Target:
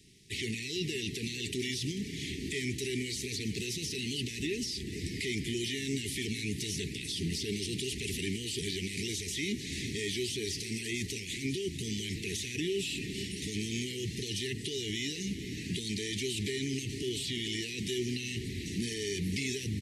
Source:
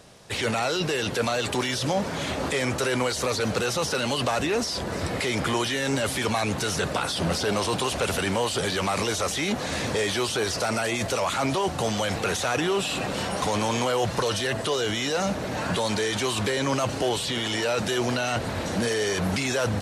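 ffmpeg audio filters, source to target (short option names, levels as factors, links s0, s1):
-filter_complex "[0:a]asuperstop=centerf=890:order=20:qfactor=0.6,asplit=2[s0][s1];[s1]aecho=0:1:442:0.188[s2];[s0][s2]amix=inputs=2:normalize=0,volume=0.447"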